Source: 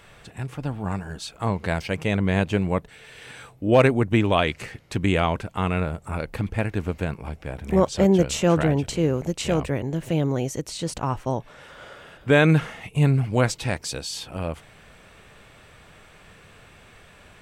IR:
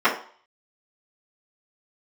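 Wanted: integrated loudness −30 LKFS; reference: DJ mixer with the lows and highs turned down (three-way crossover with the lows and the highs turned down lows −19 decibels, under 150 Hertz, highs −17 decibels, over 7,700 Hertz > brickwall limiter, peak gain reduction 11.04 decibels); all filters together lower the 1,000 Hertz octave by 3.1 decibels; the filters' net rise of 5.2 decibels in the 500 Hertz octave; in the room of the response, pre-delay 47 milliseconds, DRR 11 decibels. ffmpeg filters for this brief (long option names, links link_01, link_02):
-filter_complex "[0:a]equalizer=frequency=500:width_type=o:gain=8.5,equalizer=frequency=1000:width_type=o:gain=-8.5,asplit=2[link_01][link_02];[1:a]atrim=start_sample=2205,adelay=47[link_03];[link_02][link_03]afir=irnorm=-1:irlink=0,volume=-31.5dB[link_04];[link_01][link_04]amix=inputs=2:normalize=0,acrossover=split=150 7700:gain=0.112 1 0.141[link_05][link_06][link_07];[link_05][link_06][link_07]amix=inputs=3:normalize=0,volume=-5dB,alimiter=limit=-17dB:level=0:latency=1"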